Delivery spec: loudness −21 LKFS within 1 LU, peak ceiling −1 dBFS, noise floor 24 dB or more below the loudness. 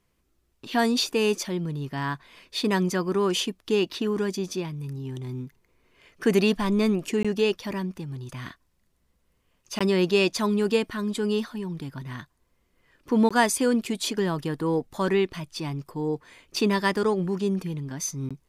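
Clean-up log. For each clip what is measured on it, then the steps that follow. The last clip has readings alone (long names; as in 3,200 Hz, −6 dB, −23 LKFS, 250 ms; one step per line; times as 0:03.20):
number of dropouts 4; longest dropout 16 ms; integrated loudness −26.0 LKFS; sample peak −8.5 dBFS; target loudness −21.0 LKFS
→ repair the gap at 0:07.23/0:09.79/0:13.29/0:18.29, 16 ms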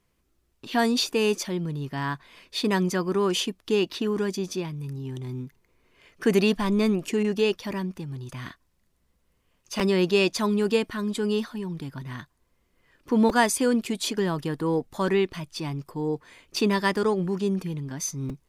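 number of dropouts 0; integrated loudness −26.0 LKFS; sample peak −8.5 dBFS; target loudness −21.0 LKFS
→ level +5 dB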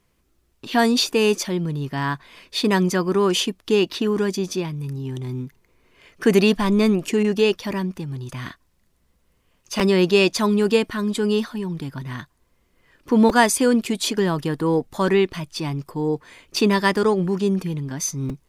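integrated loudness −21.0 LKFS; sample peak −3.5 dBFS; background noise floor −65 dBFS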